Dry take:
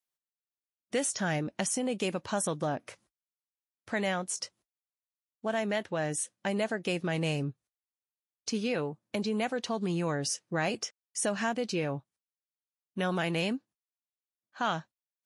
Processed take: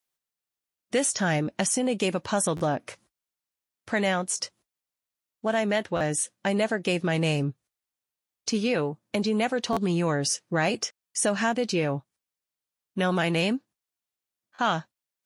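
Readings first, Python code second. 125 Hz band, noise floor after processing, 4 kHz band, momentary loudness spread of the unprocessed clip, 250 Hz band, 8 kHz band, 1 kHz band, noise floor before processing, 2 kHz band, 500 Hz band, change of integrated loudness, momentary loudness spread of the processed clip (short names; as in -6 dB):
+5.5 dB, under -85 dBFS, +5.5 dB, 6 LU, +5.5 dB, +5.5 dB, +5.5 dB, under -85 dBFS, +5.5 dB, +5.5 dB, +5.5 dB, 6 LU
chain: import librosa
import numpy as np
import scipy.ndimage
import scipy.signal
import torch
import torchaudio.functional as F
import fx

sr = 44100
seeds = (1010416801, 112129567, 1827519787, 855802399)

p1 = 10.0 ** (-21.5 / 20.0) * np.tanh(x / 10.0 ** (-21.5 / 20.0))
p2 = x + (p1 * 10.0 ** (-8.0 / 20.0))
p3 = fx.buffer_glitch(p2, sr, at_s=(2.56, 5.96, 9.72, 11.06, 13.92, 14.54), block=512, repeats=3)
y = p3 * 10.0 ** (3.0 / 20.0)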